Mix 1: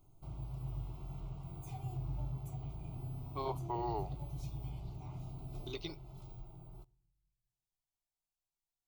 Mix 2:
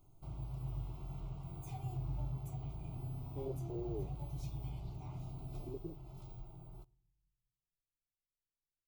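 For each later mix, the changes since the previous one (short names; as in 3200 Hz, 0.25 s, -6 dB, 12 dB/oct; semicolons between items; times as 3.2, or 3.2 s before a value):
speech: add Chebyshev low-pass 530 Hz, order 4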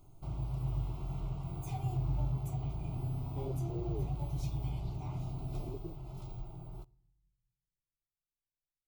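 background +6.5 dB; master: add high shelf 12000 Hz -4 dB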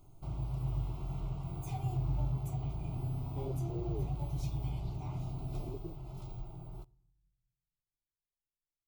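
none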